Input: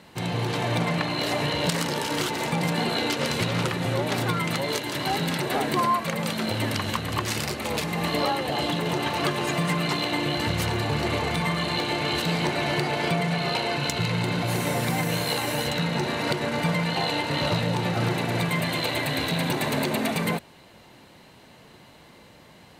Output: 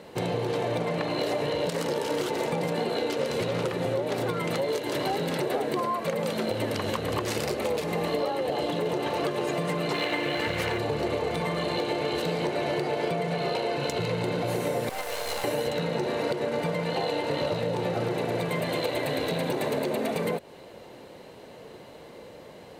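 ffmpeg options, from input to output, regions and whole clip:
-filter_complex "[0:a]asettb=1/sr,asplit=3[a][b][c];[a]atrim=end=9.944[d];[b]atrim=start=9.94:end=10.78,asetpts=PTS-STARTPTS,afade=t=in:d=0.004:c=qsin,afade=t=out:st=0.836:d=0.004:c=qsin,equalizer=f=2k:t=o:w=1.6:g=10,aeval=exprs='sgn(val(0))*max(abs(val(0))-0.00794,0)':c=same[e];[c]atrim=start=10.776[f];[d][e]acrossfade=d=0.004:c1=hsin:c2=qsin[g];[g][f]acrossfade=d=0.004:c1=qsin:c2=hsin,asettb=1/sr,asplit=3[h][i][j];[h]atrim=end=14.894[k];[i]atrim=start=14.89:end=15.44,asetpts=PTS-STARTPTS,afade=t=in:d=0.004:c=qsin,afade=t=out:st=0.546:d=0.004:c=qsin,highpass=f=600:w=0.5412,highpass=f=600:w=1.3066,aeval=exprs='max(val(0),0)':c=same[l];[j]atrim=start=15.436[m];[k][l]acrossfade=d=0.004:c1=hsin:c2=qsin[n];[n][m]acrossfade=d=0.004:c1=qsin:c2=hsin,equalizer=f=480:w=1.3:g=13,acompressor=threshold=-24dB:ratio=6,volume=-1dB"

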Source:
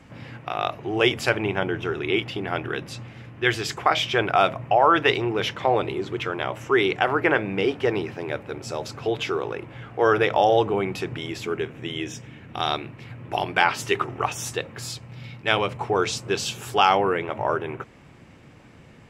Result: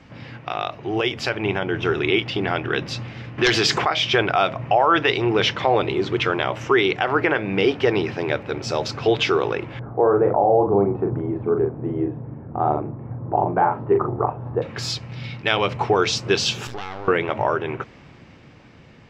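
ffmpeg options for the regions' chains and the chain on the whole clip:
-filter_complex "[0:a]asettb=1/sr,asplit=3[a][b][c];[a]atrim=end=3.384[d];[b]atrim=start=3.38:end=3.85,asetpts=PTS-STARTPTS,afade=t=in:d=0.004:c=qsin,afade=t=out:st=0.466:d=0.004:c=qsin,highpass=140,aeval=exprs='0.531*sin(PI/2*2.51*val(0)/0.531)':c=same,acompressor=threshold=-25dB:ratio=3:attack=3.2:release=140:knee=1:detection=peak[e];[c]atrim=start=3.846[f];[d][e]acrossfade=d=0.004:c1=hsin:c2=qsin[g];[g][f]acrossfade=d=0.004:c1=qsin:c2=hsin,asettb=1/sr,asplit=3[h][i][j];[h]atrim=end=9.794[k];[i]atrim=start=9.79:end=14.62,asetpts=PTS-STARTPTS,afade=t=in:d=0.004:c=qsin,afade=t=out:st=4.826:d=0.004:c=qsin,lowpass=f=1k:w=0.5412,lowpass=f=1k:w=1.3066,asplit=2[l][m];[m]adelay=40,volume=-5dB[n];[l][n]amix=inputs=2:normalize=0,atrim=end_sample=213003[o];[j]atrim=start=14.616[p];[k][o]acrossfade=d=0.004:c1=hsin:c2=qsin[q];[q][p]acrossfade=d=0.004:c1=qsin:c2=hsin,asettb=1/sr,asplit=3[r][s][t];[r]atrim=end=16.674[u];[s]atrim=start=16.67:end=17.08,asetpts=PTS-STARTPTS,afade=t=in:d=0.004:c=qsin,afade=t=out:st=0.406:d=0.004:c=qsin,highshelf=f=3.1k:g=-7.5,acompressor=threshold=-33dB:ratio=6:attack=3.2:release=140:knee=1:detection=peak,aeval=exprs='max(val(0),0)':c=same[v];[t]atrim=start=17.076[w];[u][v]acrossfade=d=0.004:c1=hsin:c2=qsin[x];[x][w]acrossfade=d=0.004:c1=qsin:c2=hsin,highshelf=f=7.1k:t=q:w=1.5:g=-11.5,alimiter=limit=-13.5dB:level=0:latency=1:release=248,dynaudnorm=f=220:g=13:m=5dB,volume=1.5dB"

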